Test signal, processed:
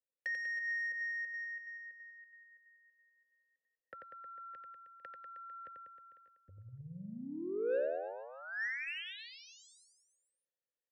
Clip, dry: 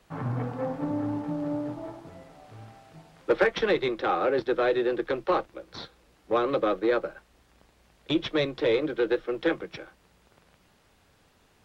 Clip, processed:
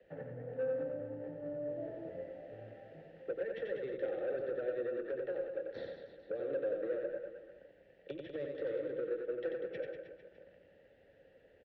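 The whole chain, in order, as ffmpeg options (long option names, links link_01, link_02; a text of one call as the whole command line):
ffmpeg -i in.wav -filter_complex "[0:a]aemphasis=mode=reproduction:type=riaa,bandreject=frequency=2500:width=11,acrossover=split=140[link_01][link_02];[link_02]acompressor=threshold=-31dB:ratio=6[link_03];[link_01][link_03]amix=inputs=2:normalize=0,alimiter=limit=-23.5dB:level=0:latency=1:release=200,acrossover=split=130|430|1900[link_04][link_05][link_06][link_07];[link_04]acompressor=threshold=-39dB:ratio=4[link_08];[link_05]acompressor=threshold=-33dB:ratio=4[link_09];[link_06]acompressor=threshold=-40dB:ratio=4[link_10];[link_07]acompressor=threshold=-43dB:ratio=4[link_11];[link_08][link_09][link_10][link_11]amix=inputs=4:normalize=0,asplit=3[link_12][link_13][link_14];[link_12]bandpass=frequency=530:width_type=q:width=8,volume=0dB[link_15];[link_13]bandpass=frequency=1840:width_type=q:width=8,volume=-6dB[link_16];[link_14]bandpass=frequency=2480:width_type=q:width=8,volume=-9dB[link_17];[link_15][link_16][link_17]amix=inputs=3:normalize=0,asoftclip=type=tanh:threshold=-38dB,aecho=1:1:90|193.5|312.5|449.4|606.8:0.631|0.398|0.251|0.158|0.1,volume=7.5dB" out.wav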